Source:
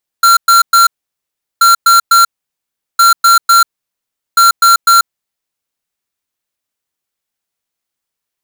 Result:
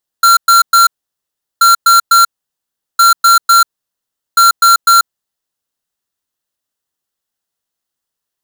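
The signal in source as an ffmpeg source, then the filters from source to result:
-f lavfi -i "aevalsrc='0.501*(2*lt(mod(1370*t,1),0.5)-1)*clip(min(mod(mod(t,1.38),0.25),0.14-mod(mod(t,1.38),0.25))/0.005,0,1)*lt(mod(t,1.38),0.75)':d=5.52:s=44100"
-af "equalizer=f=2300:t=o:w=0.22:g=-10.5"

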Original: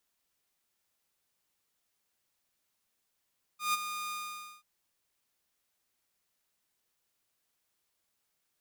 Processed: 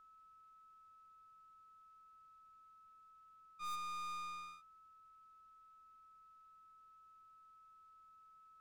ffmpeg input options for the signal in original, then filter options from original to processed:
-f lavfi -i "aevalsrc='0.0708*(2*mod(1220*t,1)-1)':d=1.036:s=44100,afade=t=in:d=0.147,afade=t=out:st=0.147:d=0.024:silence=0.316,afade=t=out:st=0.52:d=0.516"
-af "aemphasis=mode=reproduction:type=bsi,aeval=exprs='val(0)+0.001*sin(2*PI*1300*n/s)':c=same,aeval=exprs='(tanh(112*val(0)+0.35)-tanh(0.35))/112':c=same"

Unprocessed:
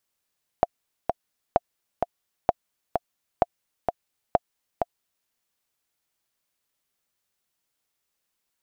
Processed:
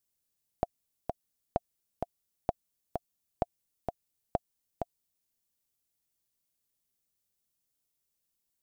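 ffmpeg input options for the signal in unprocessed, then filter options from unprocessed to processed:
-f lavfi -i "aevalsrc='pow(10,(-4.5-5*gte(mod(t,2*60/129),60/129))/20)*sin(2*PI*698*mod(t,60/129))*exp(-6.91*mod(t,60/129)/0.03)':d=4.65:s=44100"
-af "equalizer=f=1400:w=0.34:g=-12.5"

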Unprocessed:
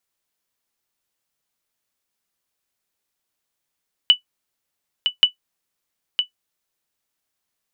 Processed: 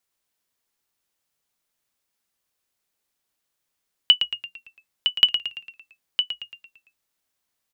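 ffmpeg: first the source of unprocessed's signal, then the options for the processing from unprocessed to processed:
-f lavfi -i "aevalsrc='0.708*(sin(2*PI*2970*mod(t,1.13))*exp(-6.91*mod(t,1.13)/0.11)+0.447*sin(2*PI*2970*max(mod(t,1.13)-0.96,0))*exp(-6.91*max(mod(t,1.13)-0.96,0)/0.11))':d=2.26:s=44100"
-filter_complex "[0:a]asplit=7[s0][s1][s2][s3][s4][s5][s6];[s1]adelay=113,afreqshift=-59,volume=0.355[s7];[s2]adelay=226,afreqshift=-118,volume=0.174[s8];[s3]adelay=339,afreqshift=-177,volume=0.0851[s9];[s4]adelay=452,afreqshift=-236,volume=0.0417[s10];[s5]adelay=565,afreqshift=-295,volume=0.0204[s11];[s6]adelay=678,afreqshift=-354,volume=0.01[s12];[s0][s7][s8][s9][s10][s11][s12]amix=inputs=7:normalize=0"

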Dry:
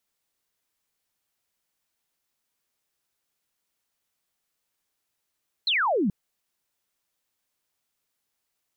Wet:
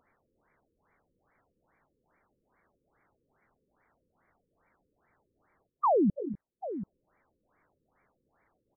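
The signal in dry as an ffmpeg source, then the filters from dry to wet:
-f lavfi -i "aevalsrc='0.0944*clip(t/0.002,0,1)*clip((0.43-t)/0.002,0,1)*sin(2*PI*4300*0.43/log(170/4300)*(exp(log(170/4300)*t/0.43)-1))':d=0.43:s=44100"
-filter_complex "[0:a]acompressor=mode=upward:threshold=0.00501:ratio=2.5,asplit=2[s0][s1];[s1]aecho=0:1:239|253|736:0.2|0.188|0.251[s2];[s0][s2]amix=inputs=2:normalize=0,afftfilt=real='re*lt(b*sr/1024,520*pow(2400/520,0.5+0.5*sin(2*PI*2.4*pts/sr)))':imag='im*lt(b*sr/1024,520*pow(2400/520,0.5+0.5*sin(2*PI*2.4*pts/sr)))':win_size=1024:overlap=0.75"

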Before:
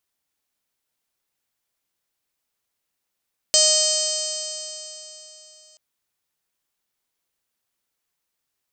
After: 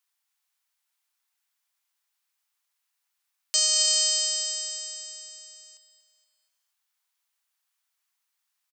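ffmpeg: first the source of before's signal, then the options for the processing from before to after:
-f lavfi -i "aevalsrc='0.075*pow(10,-3*t/3.49)*sin(2*PI*619.13*t)+0.00944*pow(10,-3*t/3.49)*sin(2*PI*1239.01*t)+0.0119*pow(10,-3*t/3.49)*sin(2*PI*1860.42*t)+0.0126*pow(10,-3*t/3.49)*sin(2*PI*2484.11*t)+0.075*pow(10,-3*t/3.49)*sin(2*PI*3110.82*t)+0.02*pow(10,-3*t/3.49)*sin(2*PI*3741.31*t)+0.0944*pow(10,-3*t/3.49)*sin(2*PI*4376.31*t)+0.119*pow(10,-3*t/3.49)*sin(2*PI*5016.55*t)+0.0668*pow(10,-3*t/3.49)*sin(2*PI*5662.75*t)+0.106*pow(10,-3*t/3.49)*sin(2*PI*6315.62*t)+0.0531*pow(10,-3*t/3.49)*sin(2*PI*6975.85*t)+0.0891*pow(10,-3*t/3.49)*sin(2*PI*7644.13*t)+0.0668*pow(10,-3*t/3.49)*sin(2*PI*8321.12*t)':d=2.23:s=44100"
-af "highpass=f=840:w=0.5412,highpass=f=840:w=1.3066,alimiter=limit=0.2:level=0:latency=1:release=11,aecho=1:1:236|472|708|944:0.237|0.107|0.048|0.0216"

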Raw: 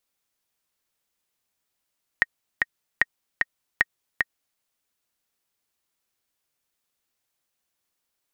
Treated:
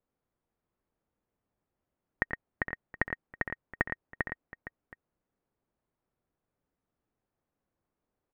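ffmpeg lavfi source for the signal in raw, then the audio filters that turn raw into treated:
-f lavfi -i "aevalsrc='pow(10,(-4.5-3*gte(mod(t,2*60/151),60/151))/20)*sin(2*PI*1870*mod(t,60/151))*exp(-6.91*mod(t,60/151)/0.03)':d=2.38:s=44100"
-filter_complex "[0:a]lowpass=1700,tiltshelf=f=840:g=8,asplit=2[s0][s1];[s1]aecho=0:1:88|113|462|721:0.133|0.473|0.251|0.112[s2];[s0][s2]amix=inputs=2:normalize=0"

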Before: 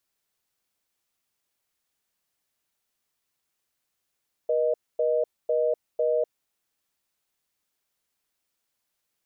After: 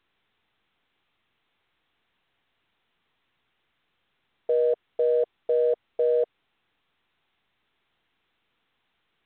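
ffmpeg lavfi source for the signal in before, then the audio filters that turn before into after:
-f lavfi -i "aevalsrc='0.0668*(sin(2*PI*480*t)+sin(2*PI*620*t))*clip(min(mod(t,0.5),0.25-mod(t,0.5))/0.005,0,1)':d=1.97:s=44100"
-af "acontrast=48,equalizer=f=590:w=7.2:g=-12.5" -ar 8000 -c:a pcm_mulaw

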